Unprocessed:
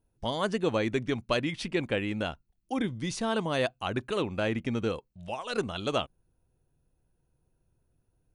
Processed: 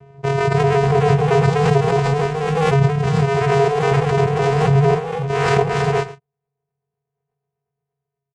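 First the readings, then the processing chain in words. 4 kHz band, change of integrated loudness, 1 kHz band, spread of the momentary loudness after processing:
+5.0 dB, +14.0 dB, +16.5 dB, 5 LU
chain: three-band isolator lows -19 dB, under 260 Hz, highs -14 dB, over 2.5 kHz; waveshaping leveller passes 3; chorus 0.5 Hz, delay 15 ms, depth 7.6 ms; in parallel at -5 dB: saturation -31.5 dBFS, distortion -7 dB; on the sum: Chebyshev shaper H 6 -16 dB, 7 -12 dB, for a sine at -15.5 dBFS; vocoder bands 4, square 138 Hz; ever faster or slower copies 318 ms, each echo +1 st, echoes 3, each echo -6 dB; on a send: delay 112 ms -16 dB; on the sum: swell ahead of each attack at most 22 dB/s; trim +7.5 dB

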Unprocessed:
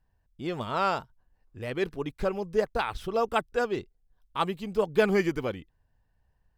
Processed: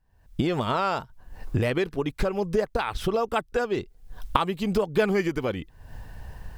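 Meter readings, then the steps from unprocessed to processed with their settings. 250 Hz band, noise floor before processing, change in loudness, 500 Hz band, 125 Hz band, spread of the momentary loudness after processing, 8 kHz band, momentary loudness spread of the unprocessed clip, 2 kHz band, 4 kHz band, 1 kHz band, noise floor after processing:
+4.5 dB, -72 dBFS, +2.5 dB, +2.0 dB, +7.5 dB, 19 LU, +4.5 dB, 11 LU, +1.5 dB, +3.5 dB, +2.5 dB, -58 dBFS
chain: recorder AGC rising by 60 dB/s

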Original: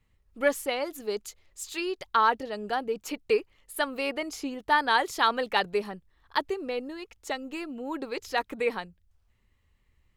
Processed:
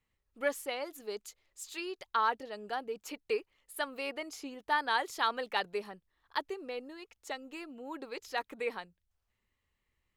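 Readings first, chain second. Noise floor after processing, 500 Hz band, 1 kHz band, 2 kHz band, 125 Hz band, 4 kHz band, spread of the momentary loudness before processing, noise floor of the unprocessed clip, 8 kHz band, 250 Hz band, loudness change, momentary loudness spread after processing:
-83 dBFS, -8.0 dB, -7.0 dB, -6.5 dB, no reading, -6.5 dB, 14 LU, -69 dBFS, -6.5 dB, -10.0 dB, -7.0 dB, 15 LU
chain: bass shelf 200 Hz -10 dB; trim -6.5 dB

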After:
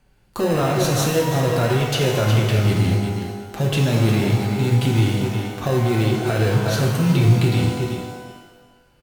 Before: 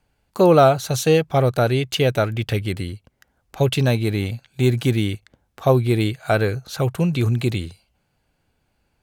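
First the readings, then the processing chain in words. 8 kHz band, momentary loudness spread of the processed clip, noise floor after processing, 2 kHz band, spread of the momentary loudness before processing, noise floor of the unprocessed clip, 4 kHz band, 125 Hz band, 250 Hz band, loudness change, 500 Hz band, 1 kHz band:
+4.0 dB, 8 LU, -57 dBFS, +1.5 dB, 11 LU, -70 dBFS, +2.0 dB, +3.5 dB, +1.5 dB, +0.5 dB, -3.0 dB, -2.0 dB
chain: flange 0.51 Hz, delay 5.1 ms, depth 2.1 ms, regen -50%; in parallel at -7 dB: sample-and-hold 39×; on the sum: speakerphone echo 370 ms, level -16 dB; compression, threshold -20 dBFS, peak gain reduction 9.5 dB; on a send: delay 359 ms -12 dB; on the sum: peak limiter -21 dBFS, peak gain reduction 11 dB; pitch-shifted reverb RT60 1.2 s, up +12 st, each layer -8 dB, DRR 0.5 dB; trim +7.5 dB

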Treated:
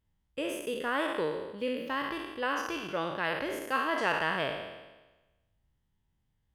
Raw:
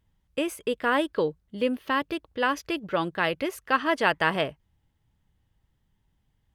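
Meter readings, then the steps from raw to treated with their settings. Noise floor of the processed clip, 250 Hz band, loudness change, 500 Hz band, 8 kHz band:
-77 dBFS, -7.0 dB, -5.0 dB, -5.5 dB, -3.5 dB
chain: spectral sustain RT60 1.15 s; trim -9 dB

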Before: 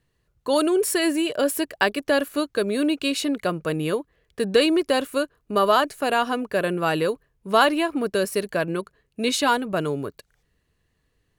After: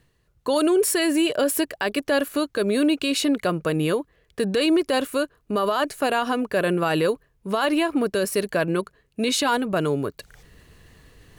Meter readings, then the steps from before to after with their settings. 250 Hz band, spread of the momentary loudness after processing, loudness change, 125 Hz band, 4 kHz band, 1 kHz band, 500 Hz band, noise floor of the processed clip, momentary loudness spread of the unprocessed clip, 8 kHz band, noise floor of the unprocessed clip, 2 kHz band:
+2.0 dB, 8 LU, 0.0 dB, +2.5 dB, 0.0 dB, -2.5 dB, 0.0 dB, -66 dBFS, 9 LU, +2.0 dB, -71 dBFS, -1.0 dB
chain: reverse; upward compressor, threshold -39 dBFS; reverse; peak limiter -16.5 dBFS, peak gain reduction 12 dB; trim +3.5 dB

